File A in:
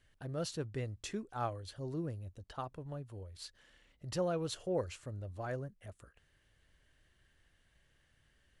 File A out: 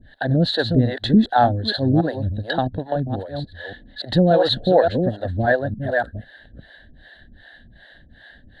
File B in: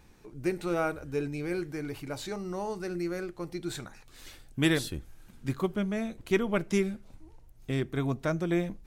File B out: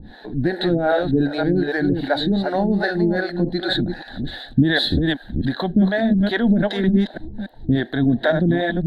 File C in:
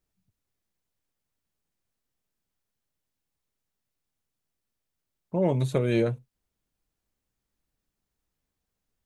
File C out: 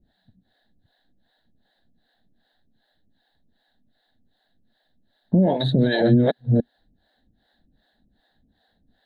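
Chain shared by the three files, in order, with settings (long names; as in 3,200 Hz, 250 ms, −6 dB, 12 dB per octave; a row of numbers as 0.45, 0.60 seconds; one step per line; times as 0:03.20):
delay that plays each chunk backwards 287 ms, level −6 dB
drawn EQ curve 150 Hz 0 dB, 240 Hz +9 dB, 400 Hz −3 dB, 740 Hz +9 dB, 1,200 Hz −13 dB, 1,700 Hz +11 dB, 2,400 Hz −17 dB, 3,900 Hz +11 dB, 5,600 Hz −25 dB, 9,200 Hz −21 dB
in parallel at −2 dB: downward compressor, threshold −34 dBFS
on the sum: brickwall limiter −19 dBFS
two-band tremolo in antiphase 2.6 Hz, depth 100%, crossover 410 Hz
loudness normalisation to −20 LKFS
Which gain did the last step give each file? +19.0, +14.5, +14.5 decibels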